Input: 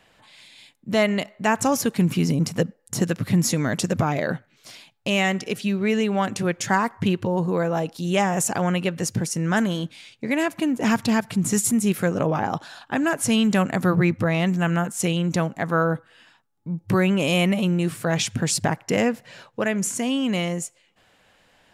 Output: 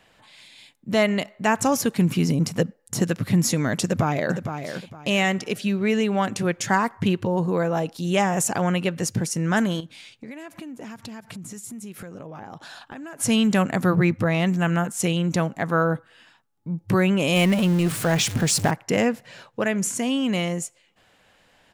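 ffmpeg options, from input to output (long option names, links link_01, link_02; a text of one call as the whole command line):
ffmpeg -i in.wav -filter_complex "[0:a]asplit=2[link_01][link_02];[link_02]afade=type=in:start_time=3.83:duration=0.01,afade=type=out:start_time=4.34:duration=0.01,aecho=0:1:460|920|1380:0.398107|0.0995268|0.0248817[link_03];[link_01][link_03]amix=inputs=2:normalize=0,asettb=1/sr,asplit=3[link_04][link_05][link_06];[link_04]atrim=end=9.804[link_07];[link_05]atrim=start=9.8:end=13.2,asetpts=PTS-STARTPTS,afade=type=in:duration=0.004:curve=qsin,afade=type=out:start_time=3.396:duration=0.004:curve=qsin,acompressor=threshold=-34dB:ratio=12:attack=3.2:release=140:knee=1:detection=peak[link_08];[link_06]atrim=start=13.196[link_09];[link_07][link_08]acrossfade=duration=0.004:curve1=hsin:curve2=qsin[link_10];[link_10][link_09]acrossfade=duration=0.004:curve1=qsin:curve2=hsin,asettb=1/sr,asplit=3[link_11][link_12][link_13];[link_11]atrim=end=17.364[link_14];[link_12]atrim=start=17.36:end=18.71,asetpts=PTS-STARTPTS,afade=type=in:duration=0.004:curve=qsin,afade=type=out:start_time=1.346:duration=0.004:curve=qsin,aeval=exprs='val(0)+0.5*0.0447*sgn(val(0))':channel_layout=same[link_15];[link_13]atrim=start=18.706[link_16];[link_14][link_15]acrossfade=duration=0.004:curve1=hsin:curve2=qsin[link_17];[link_17][link_16]acrossfade=duration=0.004:curve1=qsin:curve2=hsin" out.wav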